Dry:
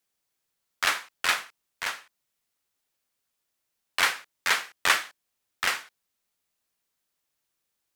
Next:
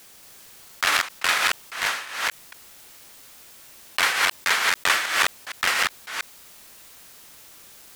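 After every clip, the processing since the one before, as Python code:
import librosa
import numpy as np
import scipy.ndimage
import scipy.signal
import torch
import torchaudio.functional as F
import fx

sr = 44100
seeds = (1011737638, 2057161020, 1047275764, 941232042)

y = fx.reverse_delay(x, sr, ms=230, wet_db=-0.5)
y = fx.env_flatten(y, sr, amount_pct=50)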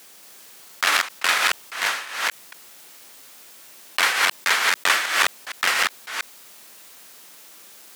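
y = scipy.signal.sosfilt(scipy.signal.butter(2, 200.0, 'highpass', fs=sr, output='sos'), x)
y = F.gain(torch.from_numpy(y), 1.5).numpy()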